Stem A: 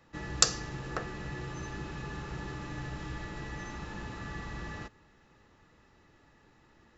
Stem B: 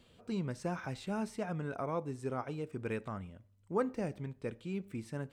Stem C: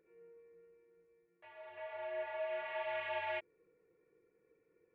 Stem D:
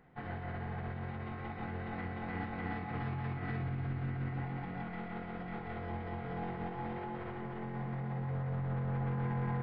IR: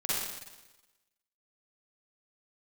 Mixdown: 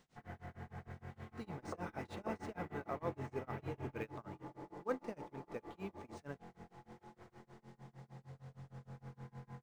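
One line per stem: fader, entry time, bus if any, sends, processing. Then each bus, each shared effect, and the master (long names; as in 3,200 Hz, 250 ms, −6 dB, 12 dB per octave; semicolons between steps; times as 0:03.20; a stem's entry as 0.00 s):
−1.0 dB, 1.30 s, no send, Chebyshev band-pass filter 310–1,000 Hz, order 3
−2.0 dB, 1.10 s, no send, low-shelf EQ 170 Hz −12 dB; floating-point word with a short mantissa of 4 bits
−17.0 dB, 0.65 s, no send, no processing
0:03.88 −6.5 dB → 0:04.15 −14 dB, 0.00 s, no send, no processing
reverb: not used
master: bit-depth reduction 12 bits, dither triangular; amplitude tremolo 6.5 Hz, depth 98%; linearly interpolated sample-rate reduction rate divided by 3×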